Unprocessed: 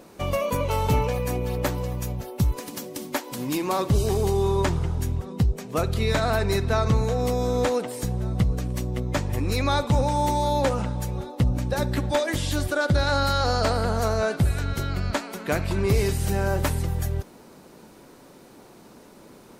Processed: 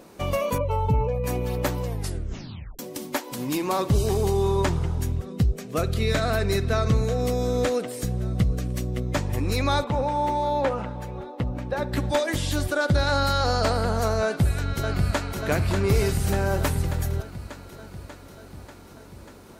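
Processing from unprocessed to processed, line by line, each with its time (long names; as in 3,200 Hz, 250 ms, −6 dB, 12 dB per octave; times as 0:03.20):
0:00.58–0:01.24: expanding power law on the bin magnitudes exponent 1.6
0:01.85: tape stop 0.94 s
0:05.12–0:09.15: parametric band 910 Hz −10.5 dB 0.33 octaves
0:09.84–0:11.93: bass and treble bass −7 dB, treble −15 dB
0:14.24–0:15.41: delay throw 590 ms, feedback 70%, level −5.5 dB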